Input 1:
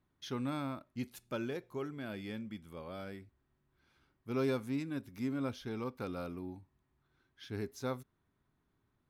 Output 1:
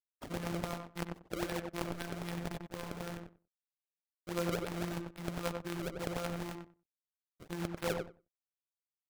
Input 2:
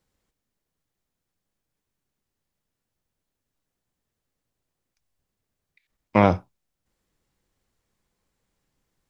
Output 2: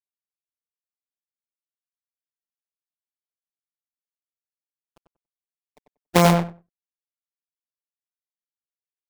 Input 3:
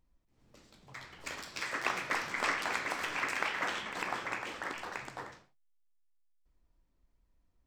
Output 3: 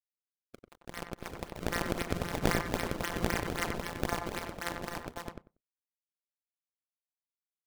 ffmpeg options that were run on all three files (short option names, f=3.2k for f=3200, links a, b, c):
-filter_complex "[0:a]bandreject=f=2.6k:w=13,asplit=2[a][b];[b]acompressor=mode=upward:threshold=-39dB:ratio=2.5,volume=1.5dB[c];[a][c]amix=inputs=2:normalize=0,acrusher=bits=5:mix=0:aa=0.000001,afftfilt=real='hypot(re,im)*cos(PI*b)':imag='0':win_size=1024:overlap=0.75,acrusher=samples=29:mix=1:aa=0.000001:lfo=1:lforange=46.4:lforate=3.8,asplit=2[d][e];[e]adelay=94,lowpass=f=1.6k:p=1,volume=-3.5dB,asplit=2[f][g];[g]adelay=94,lowpass=f=1.6k:p=1,volume=0.16,asplit=2[h][i];[i]adelay=94,lowpass=f=1.6k:p=1,volume=0.16[j];[f][h][j]amix=inputs=3:normalize=0[k];[d][k]amix=inputs=2:normalize=0,volume=-2.5dB"